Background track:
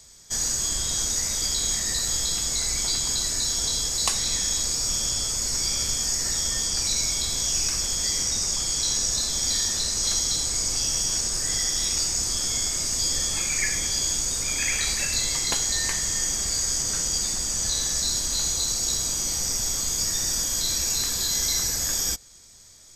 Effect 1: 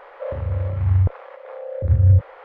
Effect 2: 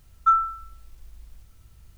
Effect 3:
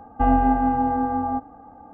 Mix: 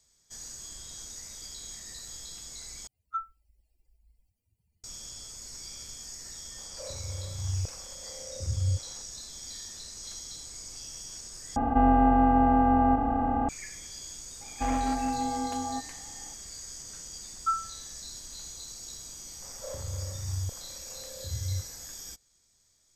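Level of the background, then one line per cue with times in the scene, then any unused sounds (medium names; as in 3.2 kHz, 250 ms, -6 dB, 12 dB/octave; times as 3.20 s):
background track -17.5 dB
2.87 s: replace with 2 -13 dB + expander on every frequency bin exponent 3
6.58 s: add 1 -14.5 dB
11.56 s: replace with 3 -5 dB + spectral levelling over time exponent 0.2
14.41 s: add 3 -9 dB + hard clipper -14.5 dBFS
17.20 s: add 2 -9 dB + upward expansion, over -32 dBFS
19.42 s: add 1 -16 dB + gain riding within 4 dB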